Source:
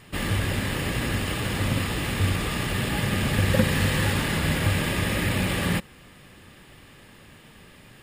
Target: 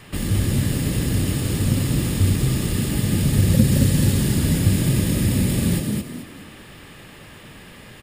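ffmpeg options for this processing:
-filter_complex "[0:a]acrossover=split=380|4600[s0][s1][s2];[s1]acompressor=threshold=0.00562:ratio=6[s3];[s0][s3][s2]amix=inputs=3:normalize=0,asplit=5[s4][s5][s6][s7][s8];[s5]adelay=217,afreqshift=34,volume=0.668[s9];[s6]adelay=434,afreqshift=68,volume=0.214[s10];[s7]adelay=651,afreqshift=102,volume=0.0684[s11];[s8]adelay=868,afreqshift=136,volume=0.0219[s12];[s4][s9][s10][s11][s12]amix=inputs=5:normalize=0,volume=1.88"

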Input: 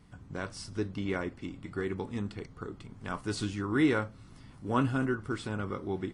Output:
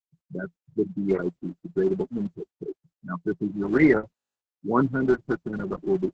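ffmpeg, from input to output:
-filter_complex "[0:a]asplit=2[s0][s1];[s1]aeval=exprs='sgn(val(0))*max(abs(val(0))-0.00299,0)':c=same,volume=0.398[s2];[s0][s2]amix=inputs=2:normalize=0,equalizer=f=4700:t=o:w=1.4:g=-3,asplit=3[s3][s4][s5];[s3]afade=t=out:st=5.15:d=0.02[s6];[s4]acrusher=bits=6:mix=0:aa=0.5,afade=t=in:st=5.15:d=0.02,afade=t=out:st=5.73:d=0.02[s7];[s5]afade=t=in:st=5.73:d=0.02[s8];[s6][s7][s8]amix=inputs=3:normalize=0,afftfilt=real='re*gte(hypot(re,im),0.0794)':imag='im*gte(hypot(re,im),0.0794)':win_size=1024:overlap=0.75,highpass=f=150:w=0.5412,highpass=f=150:w=1.3066,equalizer=f=170:t=q:w=4:g=10,equalizer=f=380:t=q:w=4:g=8,equalizer=f=2000:t=q:w=4:g=9,equalizer=f=5200:t=q:w=4:g=-4,lowpass=f=8700:w=0.5412,lowpass=f=8700:w=1.3066,volume=1.26" -ar 48000 -c:a libopus -b:a 10k

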